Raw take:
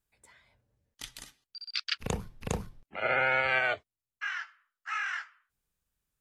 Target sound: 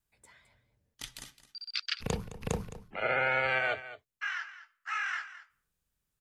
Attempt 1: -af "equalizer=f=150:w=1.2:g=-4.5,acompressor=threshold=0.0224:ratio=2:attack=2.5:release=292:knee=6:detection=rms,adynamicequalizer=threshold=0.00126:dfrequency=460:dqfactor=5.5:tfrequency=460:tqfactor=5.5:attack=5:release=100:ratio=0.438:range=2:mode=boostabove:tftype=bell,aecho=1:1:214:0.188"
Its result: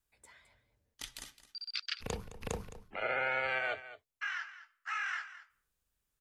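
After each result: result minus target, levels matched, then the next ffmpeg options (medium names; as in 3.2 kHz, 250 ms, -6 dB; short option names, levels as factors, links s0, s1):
compression: peak gain reduction +4.5 dB; 125 Hz band -3.5 dB
-af "equalizer=f=150:w=1.2:g=-4.5,acompressor=threshold=0.0668:ratio=2:attack=2.5:release=292:knee=6:detection=rms,adynamicequalizer=threshold=0.00126:dfrequency=460:dqfactor=5.5:tfrequency=460:tqfactor=5.5:attack=5:release=100:ratio=0.438:range=2:mode=boostabove:tftype=bell,aecho=1:1:214:0.188"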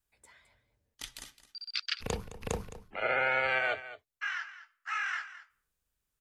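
125 Hz band -4.0 dB
-af "equalizer=f=150:w=1.2:g=2.5,acompressor=threshold=0.0668:ratio=2:attack=2.5:release=292:knee=6:detection=rms,adynamicequalizer=threshold=0.00126:dfrequency=460:dqfactor=5.5:tfrequency=460:tqfactor=5.5:attack=5:release=100:ratio=0.438:range=2:mode=boostabove:tftype=bell,aecho=1:1:214:0.188"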